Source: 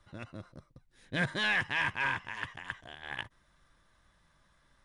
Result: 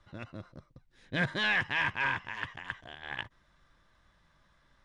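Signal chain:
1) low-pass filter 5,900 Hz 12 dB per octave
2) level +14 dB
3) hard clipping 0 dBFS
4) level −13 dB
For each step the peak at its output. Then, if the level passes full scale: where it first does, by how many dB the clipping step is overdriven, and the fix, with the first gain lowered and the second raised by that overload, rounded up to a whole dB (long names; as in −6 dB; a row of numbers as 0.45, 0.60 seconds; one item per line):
−19.5, −5.5, −5.5, −18.5 dBFS
no step passes full scale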